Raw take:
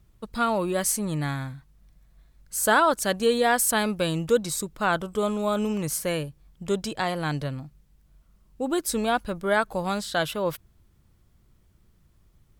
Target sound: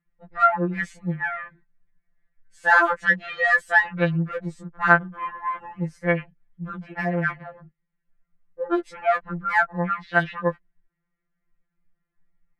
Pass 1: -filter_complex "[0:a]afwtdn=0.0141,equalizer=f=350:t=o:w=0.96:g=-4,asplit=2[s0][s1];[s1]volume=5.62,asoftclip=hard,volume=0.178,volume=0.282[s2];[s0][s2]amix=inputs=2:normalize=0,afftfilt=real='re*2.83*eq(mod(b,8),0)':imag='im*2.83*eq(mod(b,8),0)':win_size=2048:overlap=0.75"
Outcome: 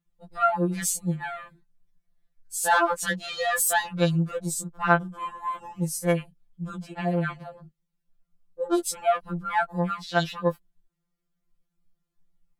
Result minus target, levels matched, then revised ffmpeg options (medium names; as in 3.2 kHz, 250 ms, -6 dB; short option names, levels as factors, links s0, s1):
2 kHz band -5.5 dB
-filter_complex "[0:a]afwtdn=0.0141,lowpass=f=1900:t=q:w=3.9,equalizer=f=350:t=o:w=0.96:g=-4,asplit=2[s0][s1];[s1]volume=5.62,asoftclip=hard,volume=0.178,volume=0.282[s2];[s0][s2]amix=inputs=2:normalize=0,afftfilt=real='re*2.83*eq(mod(b,8),0)':imag='im*2.83*eq(mod(b,8),0)':win_size=2048:overlap=0.75"